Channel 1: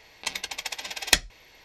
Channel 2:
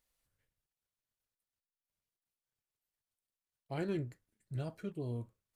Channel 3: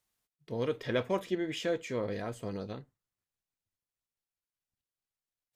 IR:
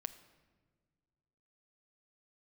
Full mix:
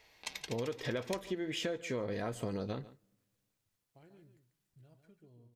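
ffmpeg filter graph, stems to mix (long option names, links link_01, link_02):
-filter_complex "[0:a]volume=-11dB,asplit=2[link_01][link_02];[link_02]volume=-24dB[link_03];[1:a]acompressor=threshold=-42dB:ratio=6,adelay=250,volume=-19.5dB,asplit=3[link_04][link_05][link_06];[link_05]volume=-4dB[link_07];[link_06]volume=-5.5dB[link_08];[2:a]dynaudnorm=framelen=220:gausssize=7:maxgain=7.5dB,volume=0dB,asplit=3[link_09][link_10][link_11];[link_10]volume=-23dB[link_12];[link_11]volume=-22dB[link_13];[3:a]atrim=start_sample=2205[link_14];[link_07][link_12]amix=inputs=2:normalize=0[link_15];[link_15][link_14]afir=irnorm=-1:irlink=0[link_16];[link_03][link_08][link_13]amix=inputs=3:normalize=0,aecho=0:1:143:1[link_17];[link_01][link_04][link_09][link_16][link_17]amix=inputs=5:normalize=0,acompressor=threshold=-33dB:ratio=12"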